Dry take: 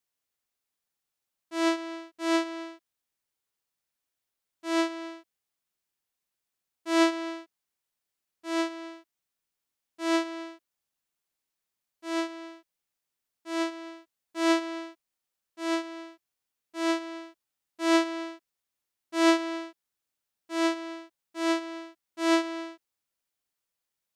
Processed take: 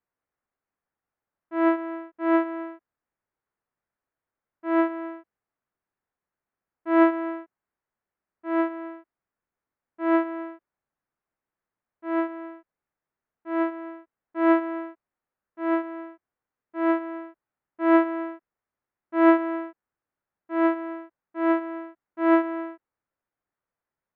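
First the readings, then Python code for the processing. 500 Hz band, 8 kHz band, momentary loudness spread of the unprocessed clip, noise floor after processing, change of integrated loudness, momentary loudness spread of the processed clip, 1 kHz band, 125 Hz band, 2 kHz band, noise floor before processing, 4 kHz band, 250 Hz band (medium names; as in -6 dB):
+5.0 dB, under -35 dB, 19 LU, under -85 dBFS, +4.0 dB, 19 LU, +5.0 dB, no reading, +1.0 dB, under -85 dBFS, under -15 dB, +5.0 dB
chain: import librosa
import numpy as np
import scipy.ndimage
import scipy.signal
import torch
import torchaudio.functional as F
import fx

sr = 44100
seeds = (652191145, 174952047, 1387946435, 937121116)

y = scipy.signal.sosfilt(scipy.signal.butter(4, 1800.0, 'lowpass', fs=sr, output='sos'), x)
y = y * librosa.db_to_amplitude(5.0)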